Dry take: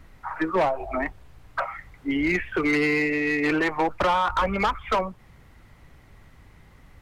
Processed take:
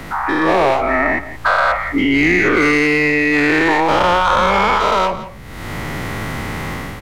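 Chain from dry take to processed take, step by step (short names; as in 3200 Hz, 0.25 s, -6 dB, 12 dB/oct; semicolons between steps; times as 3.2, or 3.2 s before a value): spectral dilation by 0.24 s; AGC gain up to 15 dB; on a send: echo 0.172 s -18 dB; on the sum: three-band squash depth 70%; gain -2 dB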